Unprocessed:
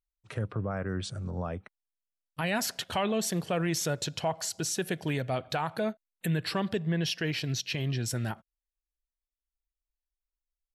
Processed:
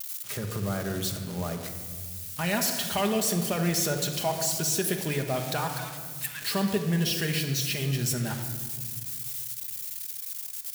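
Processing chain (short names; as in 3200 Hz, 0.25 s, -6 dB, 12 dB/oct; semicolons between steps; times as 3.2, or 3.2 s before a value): switching spikes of -26 dBFS; 5.75–6.42 steep high-pass 840 Hz 72 dB/oct; shoebox room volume 2300 m³, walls mixed, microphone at 1.3 m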